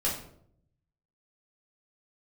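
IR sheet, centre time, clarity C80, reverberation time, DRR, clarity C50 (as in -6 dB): 35 ms, 9.0 dB, 0.65 s, -6.5 dB, 5.5 dB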